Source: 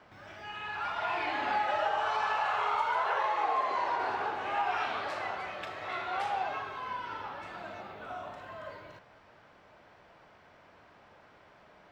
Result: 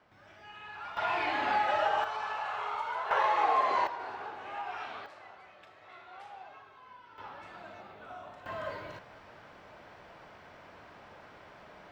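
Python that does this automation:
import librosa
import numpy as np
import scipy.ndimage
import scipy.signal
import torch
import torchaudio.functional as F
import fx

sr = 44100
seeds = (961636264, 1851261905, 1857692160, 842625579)

y = fx.gain(x, sr, db=fx.steps((0.0, -7.5), (0.97, 1.5), (2.04, -5.5), (3.11, 3.0), (3.87, -8.0), (5.06, -15.5), (7.18, -5.0), (8.46, 5.5)))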